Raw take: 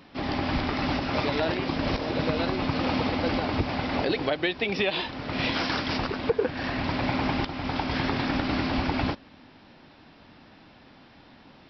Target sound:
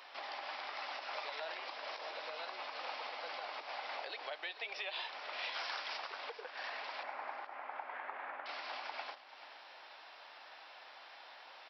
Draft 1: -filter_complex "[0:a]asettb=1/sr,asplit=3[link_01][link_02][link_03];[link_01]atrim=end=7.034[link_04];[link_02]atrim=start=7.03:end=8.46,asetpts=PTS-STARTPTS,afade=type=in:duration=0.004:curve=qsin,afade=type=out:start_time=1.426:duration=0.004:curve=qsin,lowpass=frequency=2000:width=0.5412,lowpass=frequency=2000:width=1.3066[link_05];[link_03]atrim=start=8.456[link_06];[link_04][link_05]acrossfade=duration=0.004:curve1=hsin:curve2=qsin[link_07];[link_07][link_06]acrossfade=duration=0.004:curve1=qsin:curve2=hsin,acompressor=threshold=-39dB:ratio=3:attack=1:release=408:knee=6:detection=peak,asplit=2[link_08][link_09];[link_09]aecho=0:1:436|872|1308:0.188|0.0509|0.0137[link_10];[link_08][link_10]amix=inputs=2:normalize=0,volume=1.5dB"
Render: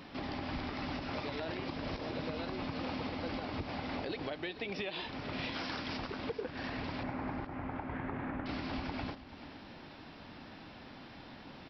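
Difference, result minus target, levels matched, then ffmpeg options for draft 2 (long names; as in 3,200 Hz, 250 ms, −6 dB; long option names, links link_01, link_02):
500 Hz band +2.5 dB
-filter_complex "[0:a]asettb=1/sr,asplit=3[link_01][link_02][link_03];[link_01]atrim=end=7.034[link_04];[link_02]atrim=start=7.03:end=8.46,asetpts=PTS-STARTPTS,afade=type=in:duration=0.004:curve=qsin,afade=type=out:start_time=1.426:duration=0.004:curve=qsin,lowpass=frequency=2000:width=0.5412,lowpass=frequency=2000:width=1.3066[link_05];[link_03]atrim=start=8.456[link_06];[link_04][link_05]acrossfade=duration=0.004:curve1=hsin:curve2=qsin[link_07];[link_07][link_06]acrossfade=duration=0.004:curve1=qsin:curve2=hsin,acompressor=threshold=-39dB:ratio=3:attack=1:release=408:knee=6:detection=peak,highpass=frequency=630:width=0.5412,highpass=frequency=630:width=1.3066,asplit=2[link_08][link_09];[link_09]aecho=0:1:436|872|1308:0.188|0.0509|0.0137[link_10];[link_08][link_10]amix=inputs=2:normalize=0,volume=1.5dB"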